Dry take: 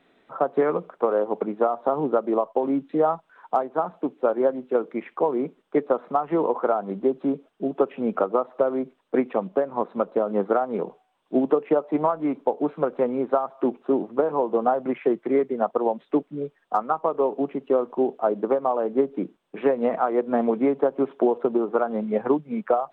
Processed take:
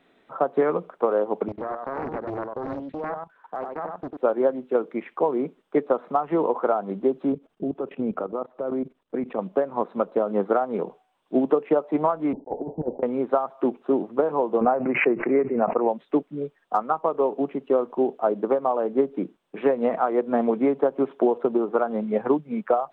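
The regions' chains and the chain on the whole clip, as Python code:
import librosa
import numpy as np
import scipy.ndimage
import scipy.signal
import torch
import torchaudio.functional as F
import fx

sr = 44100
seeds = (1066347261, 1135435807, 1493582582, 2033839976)

y = fx.chain(x, sr, fx.level_steps(step_db=15),
    fx.echo_single(ms=97, db=-4.0),
    fx.doppler_dist(depth_ms=0.78), at=(1.48, 4.17))
y = fx.chain(y, sr, fx.level_steps(step_db=15),
    fx.low_shelf(hz=360.0, db=8.5), at=(7.32, 9.39))
y = fx.chain(y, sr, fx.block_float(bits=3),
    fx.steep_lowpass(hz=910.0, slope=96),
    fx.over_compress(threshold_db=-27.0, ratio=-0.5), at=(12.33, 13.03))
y = fx.chain(y, sr, fx.resample_bad(factor=8, down='none', up='filtered'),
    fx.pre_swell(db_per_s=69.0), at=(14.61, 15.89))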